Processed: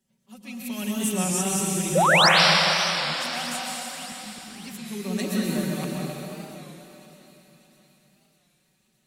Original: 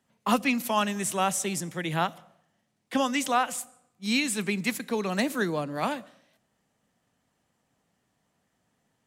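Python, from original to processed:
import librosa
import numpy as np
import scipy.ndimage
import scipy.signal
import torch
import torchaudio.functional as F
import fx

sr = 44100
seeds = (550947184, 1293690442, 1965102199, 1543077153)

y = fx.rattle_buzz(x, sr, strikes_db=-32.0, level_db=-30.0)
y = fx.env_lowpass_down(y, sr, base_hz=450.0, full_db=-25.0, at=(3.56, 4.53))
y = fx.peak_eq(y, sr, hz=1100.0, db=-14.5, octaves=2.6)
y = fx.hum_notches(y, sr, base_hz=50, count=4)
y = y + 0.76 * np.pad(y, (int(5.3 * sr / 1000.0), 0))[:len(y)]
y = fx.over_compress(y, sr, threshold_db=-31.0, ratio=-1.0, at=(5.32, 5.76))
y = fx.auto_swell(y, sr, attack_ms=682.0)
y = fx.spec_paint(y, sr, seeds[0], shape='rise', start_s=1.95, length_s=0.34, low_hz=470.0, high_hz=6000.0, level_db=-19.0)
y = fx.echo_wet_highpass(y, sr, ms=605, feedback_pct=55, hz=2000.0, wet_db=-15.0)
y = fx.rev_plate(y, sr, seeds[1], rt60_s=3.7, hf_ratio=0.95, predelay_ms=110, drr_db=-4.0)
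y = fx.record_warp(y, sr, rpm=33.33, depth_cents=100.0)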